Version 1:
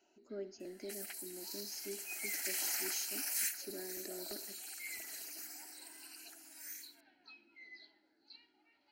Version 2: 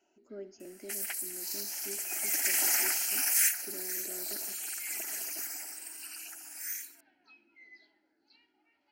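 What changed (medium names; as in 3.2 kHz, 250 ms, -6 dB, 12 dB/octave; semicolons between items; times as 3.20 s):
second sound +10.5 dB; master: add peaking EQ 4.1 kHz -10 dB 0.35 oct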